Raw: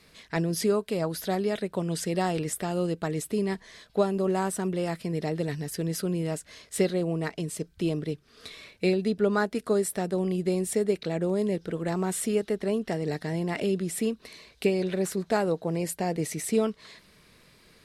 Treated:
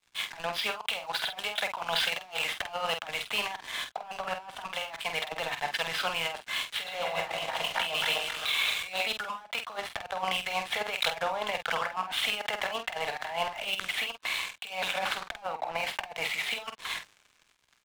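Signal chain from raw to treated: 6.61–9.06 regenerating reverse delay 0.131 s, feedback 70%, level -6.5 dB; elliptic band-pass 790–3400 Hz, stop band 40 dB; notch 1900 Hz, Q 10; dynamic EQ 1600 Hz, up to -6 dB, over -53 dBFS, Q 1.4; sample leveller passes 5; negative-ratio compressor -32 dBFS, ratio -0.5; doubler 48 ms -7 dB; three-band expander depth 70%

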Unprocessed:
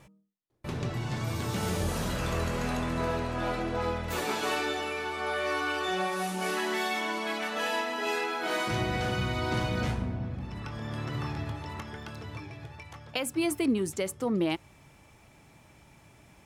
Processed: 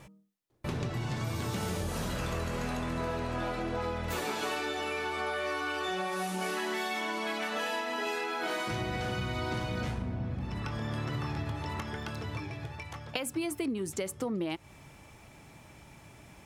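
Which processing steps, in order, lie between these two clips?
compressor, threshold -34 dBFS, peak gain reduction 11.5 dB; gain +3.5 dB

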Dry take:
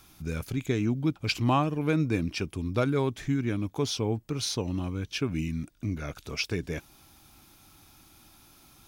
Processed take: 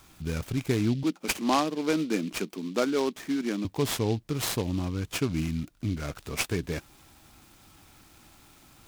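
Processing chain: 1.03–3.65 elliptic high-pass 190 Hz, stop band 50 dB; noise-modulated delay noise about 3400 Hz, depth 0.048 ms; gain +1.5 dB

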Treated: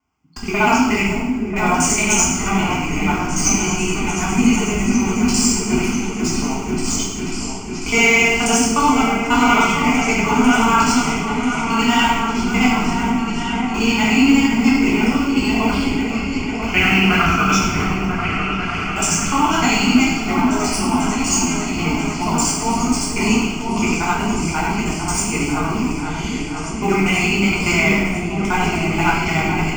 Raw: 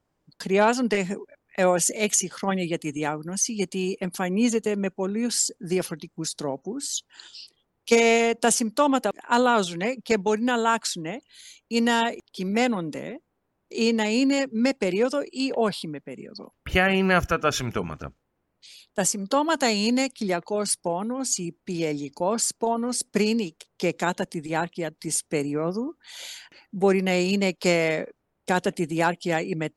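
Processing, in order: local time reversal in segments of 60 ms; HPF 86 Hz 6 dB/oct; bell 2000 Hz +7.5 dB 1.1 oct; in parallel at -8 dB: Schmitt trigger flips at -25.5 dBFS; on the sum: fixed phaser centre 2600 Hz, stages 8; repeats that get brighter 0.495 s, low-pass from 400 Hz, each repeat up 2 oct, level -3 dB; two-slope reverb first 0.88 s, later 2.8 s, from -19 dB, DRR -6 dB

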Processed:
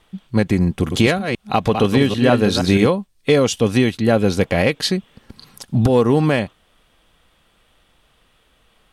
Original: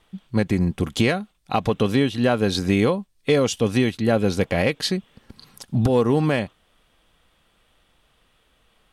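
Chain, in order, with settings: 0.72–2.87 reverse delay 0.158 s, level -6 dB; gain +4 dB

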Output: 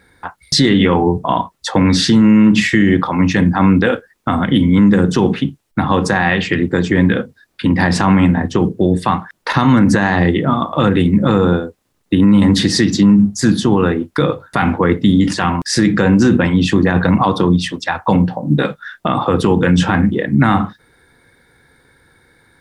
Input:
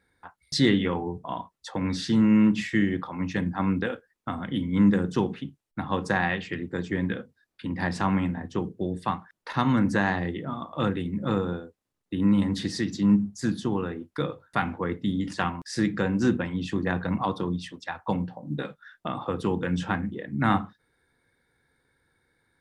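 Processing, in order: maximiser +20 dB; gain -2 dB

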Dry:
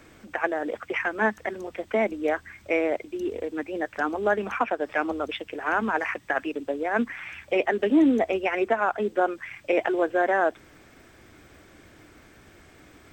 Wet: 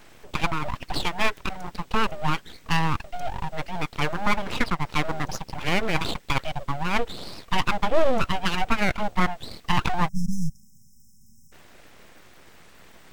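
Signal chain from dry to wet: full-wave rectifier; spectral delete 10.08–11.52, 240–5100 Hz; gain +3.5 dB

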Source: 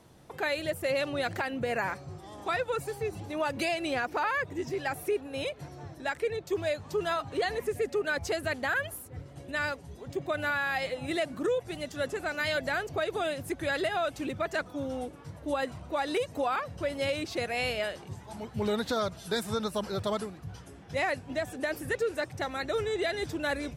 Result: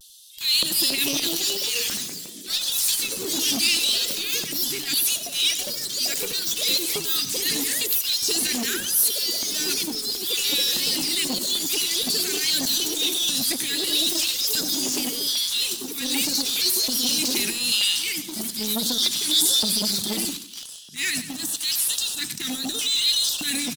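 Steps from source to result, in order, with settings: Chebyshev band-stop 190–3300 Hz, order 2; RIAA curve recording; transient shaper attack -10 dB, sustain +8 dB; LFO high-pass square 0.79 Hz 230–3300 Hz; in parallel at -10 dB: companded quantiser 2-bit; on the sum: vibrato 0.66 Hz 50 cents; LFO notch square 1.6 Hz 550–2200 Hz; on a send: feedback echo 96 ms, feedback 44%, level -13 dB; on the sum: echoes that change speed 0.376 s, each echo +3 st, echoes 3; core saturation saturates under 1700 Hz; gain +7.5 dB

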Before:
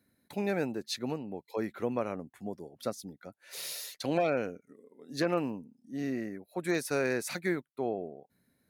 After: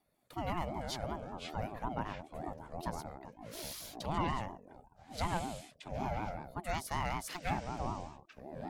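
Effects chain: echoes that change speed 0.143 s, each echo -6 st, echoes 2, each echo -6 dB; ring modulator with a swept carrier 430 Hz, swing 25%, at 5.3 Hz; gain -3 dB

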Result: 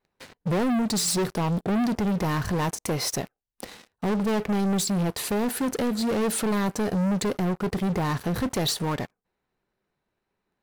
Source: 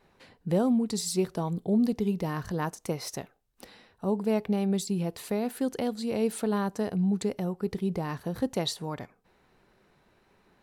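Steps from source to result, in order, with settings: sample leveller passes 5; gain -6 dB

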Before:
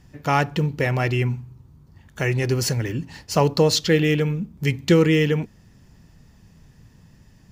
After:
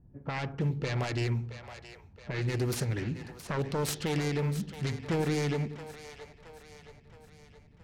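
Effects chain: self-modulated delay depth 0.46 ms; limiter -14.5 dBFS, peak gain reduction 9 dB; low-pass opened by the level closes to 500 Hz, open at -19.5 dBFS; split-band echo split 470 Hz, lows 90 ms, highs 0.644 s, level -11.5 dB; speed mistake 25 fps video run at 24 fps; gain -6.5 dB

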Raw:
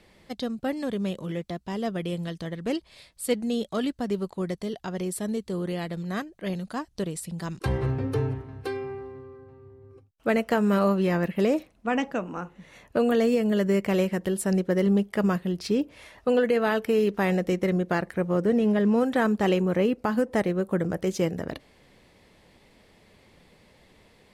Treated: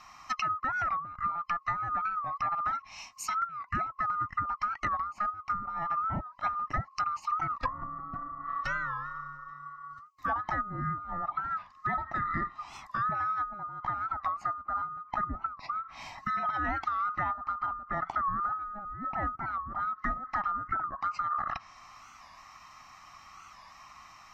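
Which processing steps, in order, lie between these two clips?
band-swap scrambler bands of 1000 Hz; limiter -23 dBFS, peak gain reduction 11.5 dB; fixed phaser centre 2300 Hz, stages 8; treble ducked by the level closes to 470 Hz, closed at -30.5 dBFS; record warp 45 rpm, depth 160 cents; gain +8.5 dB

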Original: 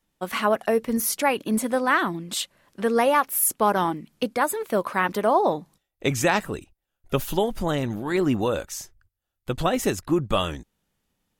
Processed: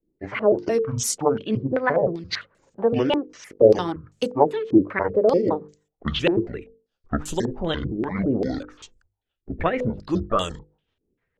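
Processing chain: trilling pitch shifter -11 st, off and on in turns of 0.172 s; bell 450 Hz +6 dB 0.53 oct; notches 50/100/150/200/250/300/350/400/450/500 Hz; rotary speaker horn 6.3 Hz; stepped low-pass 5.1 Hz 350–7400 Hz

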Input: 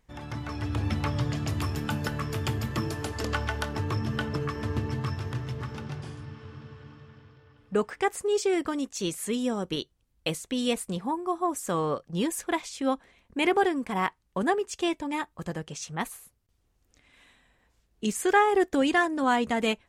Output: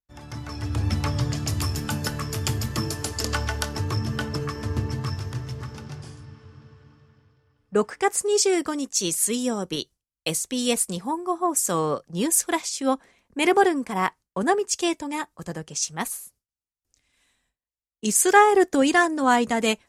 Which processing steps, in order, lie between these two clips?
gate with hold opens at -54 dBFS; band shelf 7600 Hz +8.5 dB; three-band expander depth 40%; gain +3 dB

